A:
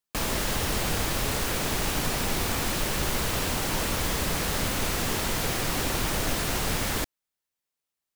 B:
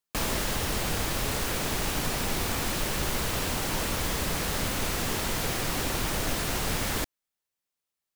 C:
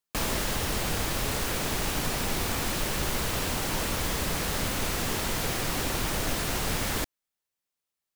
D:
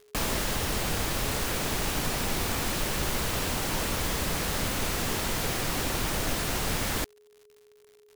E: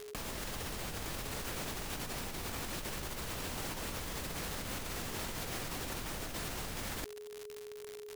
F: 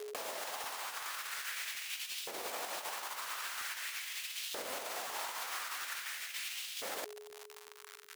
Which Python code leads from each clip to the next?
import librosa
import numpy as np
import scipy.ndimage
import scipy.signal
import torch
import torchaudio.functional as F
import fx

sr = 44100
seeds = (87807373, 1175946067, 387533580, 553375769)

y1 = fx.rider(x, sr, range_db=10, speed_s=0.5)
y1 = F.gain(torch.from_numpy(y1), -1.5).numpy()
y2 = y1
y3 = fx.dmg_crackle(y2, sr, seeds[0], per_s=140.0, level_db=-45.0)
y3 = y3 + 10.0 ** (-56.0 / 20.0) * np.sin(2.0 * np.pi * 420.0 * np.arange(len(y3)) / sr)
y4 = fx.over_compress(y3, sr, threshold_db=-40.0, ratio=-1.0)
y5 = fx.filter_lfo_highpass(y4, sr, shape='saw_up', hz=0.44, low_hz=460.0, high_hz=3300.0, q=2.0)
y5 = fx.buffer_crackle(y5, sr, first_s=0.63, period_s=0.37, block=512, kind='repeat')